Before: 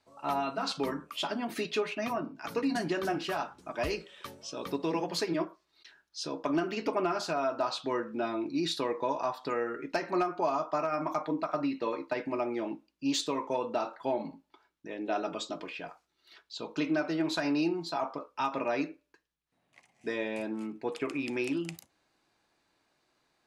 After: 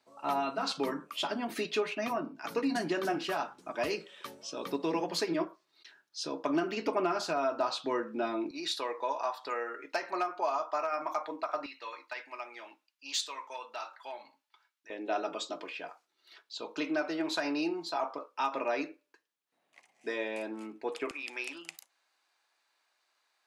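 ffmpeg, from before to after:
ffmpeg -i in.wav -af "asetnsamples=nb_out_samples=441:pad=0,asendcmd='8.51 highpass f 580;11.66 highpass f 1300;14.9 highpass f 340;21.11 highpass f 870',highpass=190" out.wav

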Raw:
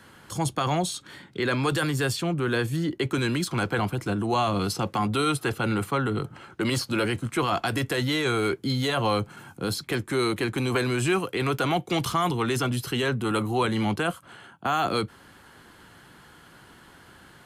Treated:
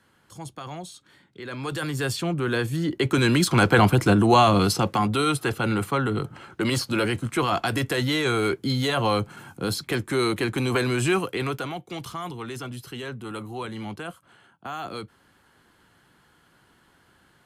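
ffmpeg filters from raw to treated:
ffmpeg -i in.wav -af "volume=10dB,afade=type=in:start_time=1.45:duration=0.75:silence=0.251189,afade=type=in:start_time=2.78:duration=1.17:silence=0.334965,afade=type=out:start_time=3.95:duration=1.19:silence=0.375837,afade=type=out:start_time=11.24:duration=0.49:silence=0.298538" out.wav

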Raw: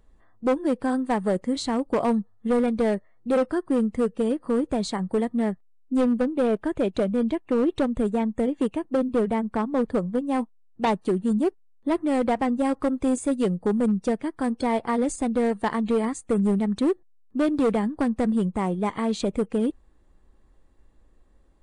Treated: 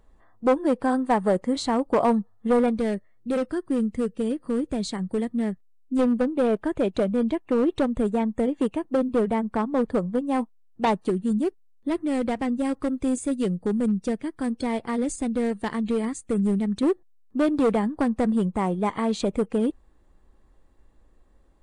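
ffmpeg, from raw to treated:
ffmpeg -i in.wav -af "asetnsamples=nb_out_samples=441:pad=0,asendcmd='2.78 equalizer g -7.5;5.99 equalizer g 1;11.1 equalizer g -6.5;16.83 equalizer g 2',equalizer=frequency=860:width_type=o:width=1.7:gain=4.5" out.wav

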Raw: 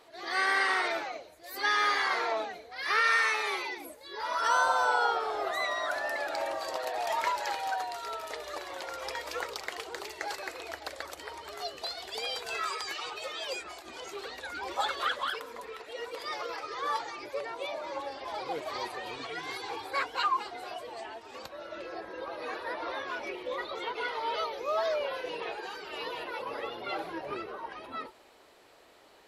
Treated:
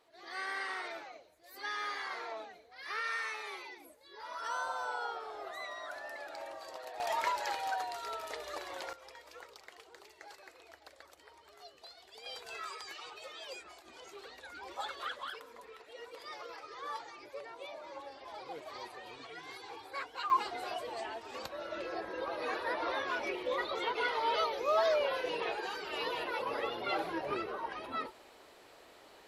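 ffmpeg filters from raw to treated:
ffmpeg -i in.wav -af "asetnsamples=nb_out_samples=441:pad=0,asendcmd='7 volume volume -3dB;8.93 volume volume -16dB;12.26 volume volume -9.5dB;20.3 volume volume 1dB',volume=-11.5dB" out.wav

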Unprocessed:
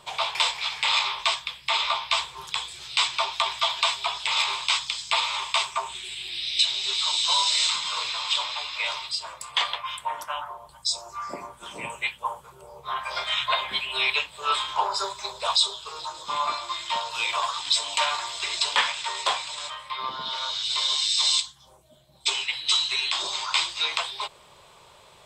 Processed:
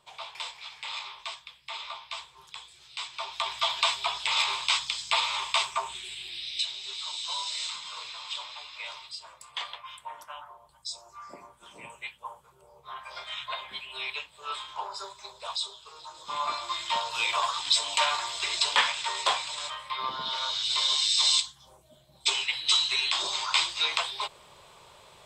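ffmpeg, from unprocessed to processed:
ffmpeg -i in.wav -af "volume=8dB,afade=type=in:start_time=3.1:duration=0.65:silence=0.251189,afade=type=out:start_time=5.8:duration=0.99:silence=0.354813,afade=type=in:start_time=16.04:duration=0.71:silence=0.316228" out.wav

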